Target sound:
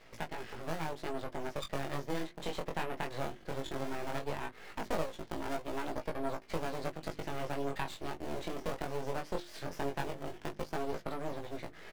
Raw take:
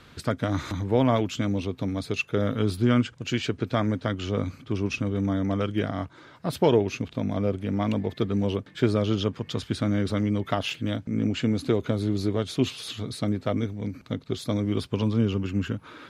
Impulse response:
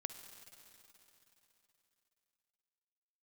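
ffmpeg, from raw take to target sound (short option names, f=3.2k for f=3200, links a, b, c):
-filter_complex "[0:a]acrossover=split=280 2400:gain=0.224 1 0.178[a][b][c];[a][b][c]amix=inputs=3:normalize=0,asplit=2[d][e];[e]acrusher=samples=26:mix=1:aa=0.000001:lfo=1:lforange=41.6:lforate=0.45,volume=-5dB[f];[d][f]amix=inputs=2:normalize=0,dynaudnorm=f=270:g=11:m=11.5dB,asetrate=59535,aresample=44100,acompressor=threshold=-36dB:ratio=2.5,bandreject=f=50:t=h:w=6,bandreject=f=100:t=h:w=6,bandreject=f=150:t=h:w=6,bandreject=f=200:t=h:w=6,bandreject=f=250:t=h:w=6,bandreject=f=300:t=h:w=6,bandreject=f=350:t=h:w=6,asplit=2[g][h];[h]adelay=19,volume=-11dB[i];[g][i]amix=inputs=2:normalize=0,aeval=exprs='max(val(0),0)':c=same,flanger=delay=17.5:depth=5.6:speed=0.17,volume=1.5dB"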